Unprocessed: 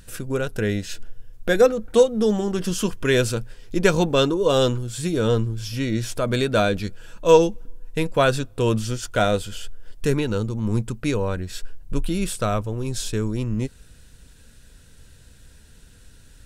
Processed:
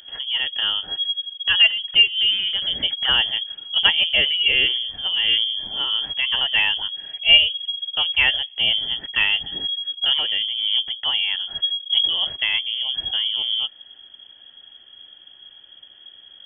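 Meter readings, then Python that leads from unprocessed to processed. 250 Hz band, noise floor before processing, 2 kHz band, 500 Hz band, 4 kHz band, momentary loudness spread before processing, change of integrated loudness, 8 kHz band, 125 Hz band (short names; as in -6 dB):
-23.0 dB, -49 dBFS, +9.0 dB, -21.5 dB, +17.5 dB, 12 LU, +4.0 dB, under -40 dB, under -20 dB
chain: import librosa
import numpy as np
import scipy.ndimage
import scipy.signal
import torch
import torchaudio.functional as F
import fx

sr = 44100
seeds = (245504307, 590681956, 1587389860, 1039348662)

y = fx.freq_invert(x, sr, carrier_hz=3300)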